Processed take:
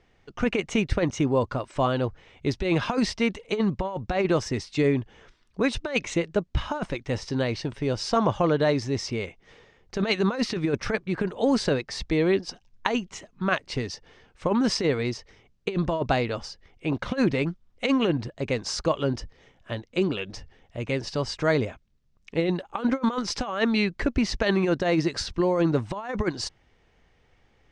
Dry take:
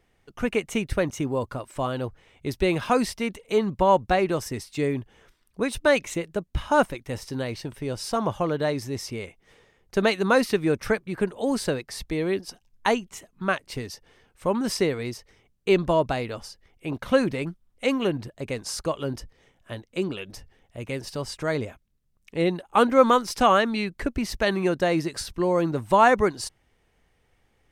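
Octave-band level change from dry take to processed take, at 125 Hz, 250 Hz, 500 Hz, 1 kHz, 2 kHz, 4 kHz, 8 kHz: +3.0, +1.5, −2.0, −6.0, −1.5, +1.5, −1.5 decibels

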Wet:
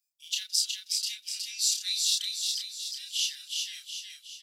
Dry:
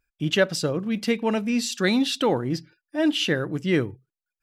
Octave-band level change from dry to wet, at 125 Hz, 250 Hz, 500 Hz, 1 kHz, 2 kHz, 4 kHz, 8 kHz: below −40 dB, below −40 dB, below −40 dB, below −40 dB, −15.0 dB, +1.5 dB, +7.0 dB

